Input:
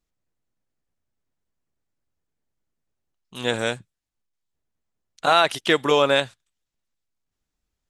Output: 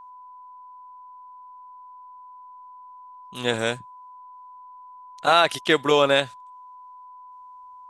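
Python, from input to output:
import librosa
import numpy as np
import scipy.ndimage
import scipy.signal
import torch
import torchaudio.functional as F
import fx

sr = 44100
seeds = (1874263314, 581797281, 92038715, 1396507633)

y = x + 10.0 ** (-42.0 / 20.0) * np.sin(2.0 * np.pi * 1000.0 * np.arange(len(x)) / sr)
y = fx.attack_slew(y, sr, db_per_s=480.0)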